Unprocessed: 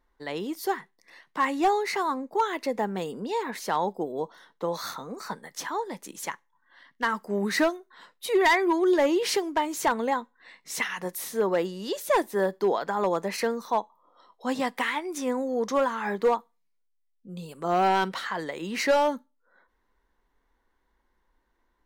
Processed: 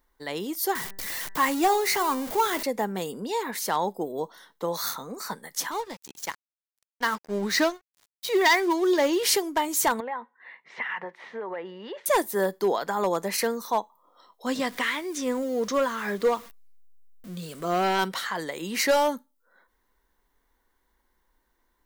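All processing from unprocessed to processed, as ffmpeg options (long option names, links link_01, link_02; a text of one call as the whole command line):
ffmpeg -i in.wav -filter_complex "[0:a]asettb=1/sr,asplit=3[link_01][link_02][link_03];[link_01]atrim=end=0.754[link_04];[link_02]atrim=start=0.75:end=2.63,asetpts=PTS-STARTPTS,afade=type=in:duration=0.004:curve=qsin,afade=type=out:start_time=1.876:duration=0.004:curve=qsin,aeval=exprs='val(0)+0.5*0.0224*sgn(val(0))':channel_layout=same,bandreject=frequency=195.1:width_type=h:width=4,bandreject=frequency=390.2:width_type=h:width=4,bandreject=frequency=585.3:width_type=h:width=4,bandreject=frequency=780.4:width_type=h:width=4,bandreject=frequency=975.5:width_type=h:width=4,bandreject=frequency=1170.6:width_type=h:width=4,bandreject=frequency=1365.7:width_type=h:width=4,bandreject=frequency=1560.8:width_type=h:width=4,bandreject=frequency=1755.9:width_type=h:width=4,bandreject=frequency=1951:width_type=h:width=4[link_05];[link_03]atrim=start=2.626[link_06];[link_04][link_05]acrossfade=duration=0.004:curve1=hsin:curve2=qsin[link_07];[link_07][link_06]acrossfade=duration=0.004:curve1=qsin:curve2=hsin,asettb=1/sr,asplit=3[link_08][link_09][link_10];[link_08]atrim=end=5.714[link_11];[link_09]atrim=start=5.71:end=9.23,asetpts=PTS-STARTPTS,afade=type=in:duration=0.004:curve=qsin,afade=type=out:start_time=3.516:duration=0.004:curve=qsin,highpass=100,highshelf=frequency=7600:width_type=q:width=1.5:gain=-11.5,aeval=exprs='sgn(val(0))*max(abs(val(0))-0.00708,0)':channel_layout=same[link_12];[link_10]atrim=start=9.226[link_13];[link_11][link_12]acrossfade=duration=0.004:curve1=hsin:curve2=qsin[link_14];[link_14][link_13]acrossfade=duration=0.004:curve1=qsin:curve2=hsin,asettb=1/sr,asplit=3[link_15][link_16][link_17];[link_15]atrim=end=10.004[link_18];[link_16]atrim=start=10:end=12.06,asetpts=PTS-STARTPTS,afade=type=in:duration=0.004:curve=qsin,afade=type=out:start_time=2.056:duration=0.004:curve=qsin,acompressor=threshold=-30dB:ratio=6:attack=3.2:release=140:knee=1:detection=peak,highpass=130,equalizer=frequency=130:width_type=q:width=4:gain=-7,equalizer=frequency=190:width_type=q:width=4:gain=-7,equalizer=frequency=290:width_type=q:width=4:gain=-10,equalizer=frequency=900:width_type=q:width=4:gain=5,equalizer=frequency=1900:width_type=q:width=4:gain=5,lowpass=frequency=2600:width=0.5412,lowpass=frequency=2600:width=1.3066[link_19];[link_17]atrim=start=12.056[link_20];[link_18][link_19]acrossfade=duration=0.004:curve1=hsin:curve2=qsin[link_21];[link_21][link_20]acrossfade=duration=0.004:curve1=qsin:curve2=hsin,asettb=1/sr,asplit=3[link_22][link_23][link_24];[link_22]atrim=end=14.464[link_25];[link_23]atrim=start=14.46:end=17.99,asetpts=PTS-STARTPTS,afade=type=in:duration=0.004:curve=qsin,afade=type=out:start_time=3.526:duration=0.004:curve=qsin,aeval=exprs='val(0)+0.5*0.00708*sgn(val(0))':channel_layout=same,acrossover=split=6700[link_26][link_27];[link_27]acompressor=threshold=-58dB:ratio=4:attack=1:release=60[link_28];[link_26][link_28]amix=inputs=2:normalize=0,equalizer=frequency=850:width_type=o:width=0.23:gain=-12.5[link_29];[link_24]atrim=start=17.986[link_30];[link_25][link_29]acrossfade=duration=0.004:curve1=hsin:curve2=qsin[link_31];[link_31][link_30]acrossfade=duration=0.004:curve1=qsin:curve2=hsin,aemphasis=mode=production:type=50kf,bandreject=frequency=2600:width=27" out.wav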